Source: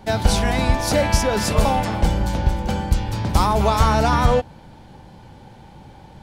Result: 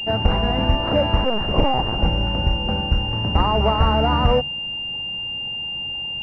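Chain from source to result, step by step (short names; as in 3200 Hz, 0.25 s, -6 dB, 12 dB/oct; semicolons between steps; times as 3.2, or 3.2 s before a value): notches 50/100/150/200 Hz; 1.24–2 LPC vocoder at 8 kHz pitch kept; pulse-width modulation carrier 2800 Hz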